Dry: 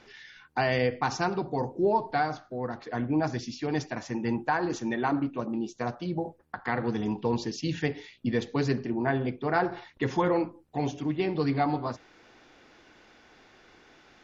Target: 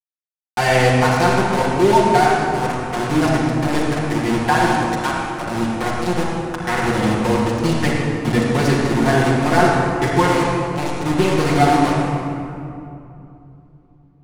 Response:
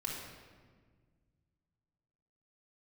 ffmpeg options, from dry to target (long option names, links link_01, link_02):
-filter_complex "[0:a]asplit=3[link_01][link_02][link_03];[link_01]afade=type=out:start_time=4.83:duration=0.02[link_04];[link_02]highpass=820,afade=type=in:start_time=4.83:duration=0.02,afade=type=out:start_time=5.39:duration=0.02[link_05];[link_03]afade=type=in:start_time=5.39:duration=0.02[link_06];[link_04][link_05][link_06]amix=inputs=3:normalize=0,asettb=1/sr,asplit=3[link_07][link_08][link_09];[link_07]atrim=end=10.234[link_10];[link_08]atrim=start=10.23:end=10.95,asetpts=PTS-STARTPTS,afade=type=in:duration=0.004:curve=qsin,afade=type=out:start_time=0.716:duration=0.004:curve=qsin,tiltshelf=frequency=1300:gain=-6[link_11];[link_09]atrim=start=10.946[link_12];[link_10][link_11]acrossfade=duration=0.004:curve1=hsin:curve2=qsin[link_13];[link_13][link_12]acrossfade=duration=0.004:curve1=qsin:curve2=hsin,aeval=exprs='val(0)*gte(abs(val(0)),0.0398)':channel_layout=same[link_14];[1:a]atrim=start_sample=2205,asetrate=22491,aresample=44100[link_15];[link_14][link_15]afir=irnorm=-1:irlink=0,volume=6dB"